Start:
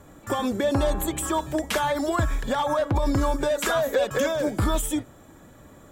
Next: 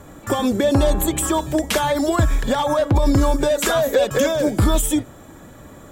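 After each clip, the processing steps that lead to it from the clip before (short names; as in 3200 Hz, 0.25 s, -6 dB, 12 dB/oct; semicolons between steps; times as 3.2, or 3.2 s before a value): dynamic EQ 1300 Hz, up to -5 dB, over -36 dBFS, Q 0.71; gain +7.5 dB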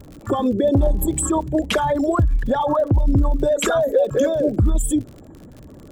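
formant sharpening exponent 2; crackle 66/s -33 dBFS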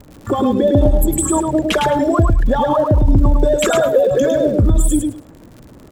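crossover distortion -48 dBFS; on a send: feedback echo 0.106 s, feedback 17%, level -4 dB; on the sum: gain +3 dB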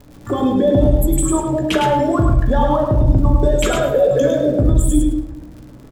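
doubler 16 ms -10.5 dB; on a send at -4 dB: reverb RT60 0.90 s, pre-delay 7 ms; on the sum: gain -3.5 dB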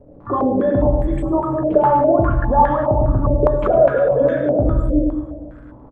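feedback echo 0.248 s, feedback 49%, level -14 dB; stepped low-pass 4.9 Hz 560–1800 Hz; gain -4 dB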